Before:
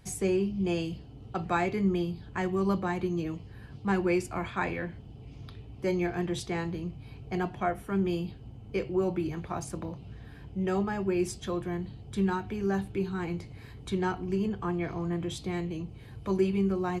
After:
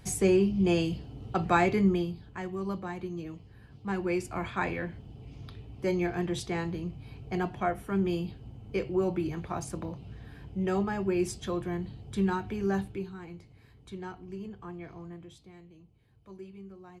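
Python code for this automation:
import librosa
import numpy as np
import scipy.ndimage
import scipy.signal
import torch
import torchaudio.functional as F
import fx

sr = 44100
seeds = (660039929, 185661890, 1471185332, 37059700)

y = fx.gain(x, sr, db=fx.line((1.78, 4.0), (2.37, -6.5), (3.75, -6.5), (4.46, 0.0), (12.8, 0.0), (13.2, -11.0), (15.01, -11.0), (15.53, -19.5)))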